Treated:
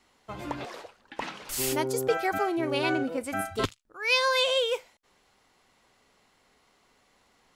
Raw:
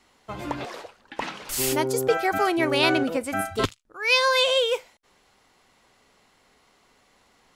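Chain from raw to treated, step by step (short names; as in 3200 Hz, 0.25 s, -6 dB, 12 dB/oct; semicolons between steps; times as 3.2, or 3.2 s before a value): 2.39–3.18 harmonic-percussive split percussive -17 dB; gain -4 dB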